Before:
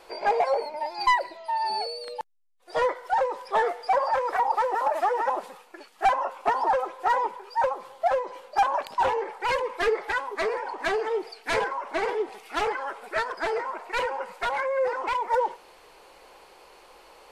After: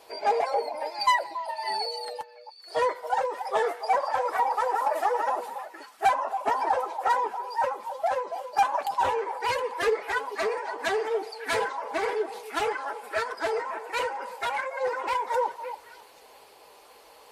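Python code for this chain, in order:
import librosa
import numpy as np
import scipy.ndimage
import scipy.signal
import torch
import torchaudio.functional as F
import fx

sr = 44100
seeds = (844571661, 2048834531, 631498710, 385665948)

y = fx.spec_quant(x, sr, step_db=15)
y = scipy.signal.sosfilt(scipy.signal.butter(2, 63.0, 'highpass', fs=sr, output='sos'), y)
y = fx.high_shelf(y, sr, hz=8100.0, db=11.5)
y = fx.notch_comb(y, sr, f0_hz=180.0)
y = fx.echo_stepped(y, sr, ms=280, hz=710.0, octaves=1.4, feedback_pct=70, wet_db=-8.5)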